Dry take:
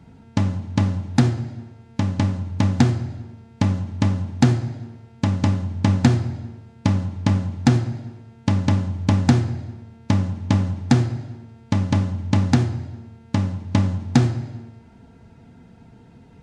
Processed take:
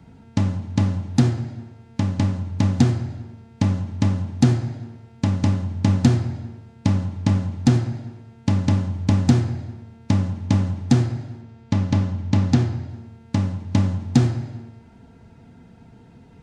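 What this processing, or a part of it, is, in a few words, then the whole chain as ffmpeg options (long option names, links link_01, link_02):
one-band saturation: -filter_complex "[0:a]asettb=1/sr,asplit=3[link_01][link_02][link_03];[link_01]atrim=end=11.414[link_04];[link_02]atrim=start=11.41:end=12.89,asetpts=PTS-STARTPTS,afade=type=in:duration=0.004:curve=qsin,afade=type=out:start_time=1.476:duration=0.004:curve=qsin,lowpass=6900[link_05];[link_03]atrim=start=12.886[link_06];[link_04][link_05]acrossfade=duration=0.004:curve1=hsin:curve2=qsin[link_07];[link_07][link_06]acrossfade=duration=0.004:curve1=qsin:curve2=hsin,acrossover=split=520|3500[link_08][link_09][link_10];[link_09]asoftclip=type=tanh:threshold=-28.5dB[link_11];[link_08][link_11][link_10]amix=inputs=3:normalize=0"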